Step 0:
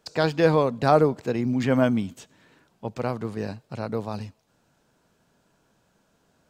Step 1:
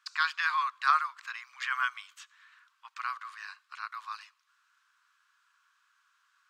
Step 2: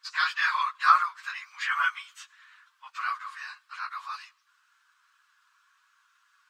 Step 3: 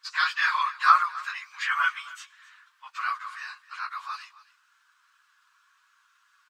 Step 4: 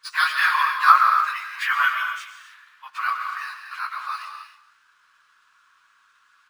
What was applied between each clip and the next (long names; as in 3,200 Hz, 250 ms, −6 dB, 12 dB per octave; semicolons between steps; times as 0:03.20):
Chebyshev high-pass filter 1,100 Hz, order 6; spectral tilt −4 dB per octave; level +6 dB
random phases in long frames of 50 ms; level +4 dB
single-tap delay 266 ms −19 dB; level +1.5 dB
convolution reverb, pre-delay 70 ms, DRR 5 dB; linearly interpolated sample-rate reduction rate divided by 3×; level +4.5 dB